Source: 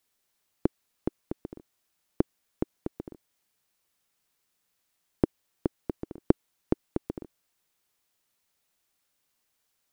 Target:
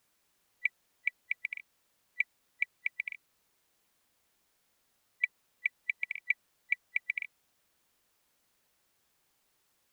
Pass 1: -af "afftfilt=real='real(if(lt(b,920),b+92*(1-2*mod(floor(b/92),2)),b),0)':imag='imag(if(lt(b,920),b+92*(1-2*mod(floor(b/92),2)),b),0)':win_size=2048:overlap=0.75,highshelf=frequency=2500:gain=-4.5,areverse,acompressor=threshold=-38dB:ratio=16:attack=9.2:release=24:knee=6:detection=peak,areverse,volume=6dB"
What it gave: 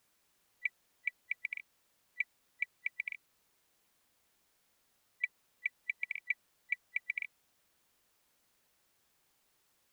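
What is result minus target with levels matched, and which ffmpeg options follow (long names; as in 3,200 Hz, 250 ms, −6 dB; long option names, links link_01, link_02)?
downward compressor: peak gain reduction +5.5 dB
-af "afftfilt=real='real(if(lt(b,920),b+92*(1-2*mod(floor(b/92),2)),b),0)':imag='imag(if(lt(b,920),b+92*(1-2*mod(floor(b/92),2)),b),0)':win_size=2048:overlap=0.75,highshelf=frequency=2500:gain=-4.5,areverse,acompressor=threshold=-32dB:ratio=16:attack=9.2:release=24:knee=6:detection=peak,areverse,volume=6dB"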